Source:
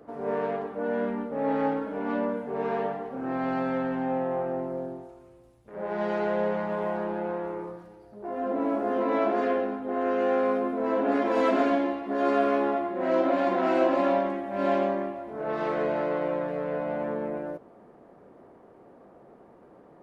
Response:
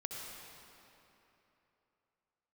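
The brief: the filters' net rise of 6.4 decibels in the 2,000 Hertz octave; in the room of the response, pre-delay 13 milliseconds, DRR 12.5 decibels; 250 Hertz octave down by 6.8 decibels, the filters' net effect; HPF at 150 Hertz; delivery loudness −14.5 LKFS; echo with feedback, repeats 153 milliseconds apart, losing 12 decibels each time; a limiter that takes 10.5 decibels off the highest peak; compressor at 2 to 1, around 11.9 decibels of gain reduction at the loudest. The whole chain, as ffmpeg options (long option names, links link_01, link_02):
-filter_complex "[0:a]highpass=150,equalizer=frequency=250:width_type=o:gain=-8,equalizer=frequency=2000:width_type=o:gain=8.5,acompressor=threshold=-43dB:ratio=2,alimiter=level_in=10.5dB:limit=-24dB:level=0:latency=1,volume=-10.5dB,aecho=1:1:153|306|459:0.251|0.0628|0.0157,asplit=2[link_01][link_02];[1:a]atrim=start_sample=2205,adelay=13[link_03];[link_02][link_03]afir=irnorm=-1:irlink=0,volume=-12.5dB[link_04];[link_01][link_04]amix=inputs=2:normalize=0,volume=28dB"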